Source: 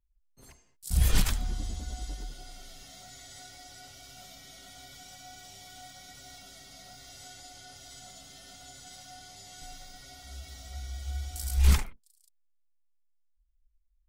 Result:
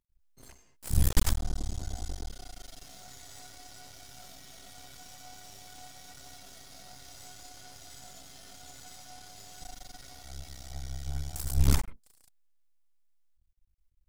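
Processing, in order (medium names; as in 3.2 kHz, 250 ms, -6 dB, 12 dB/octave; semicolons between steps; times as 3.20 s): dynamic bell 2.6 kHz, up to -7 dB, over -56 dBFS, Q 0.89; half-wave rectifier; trim +4 dB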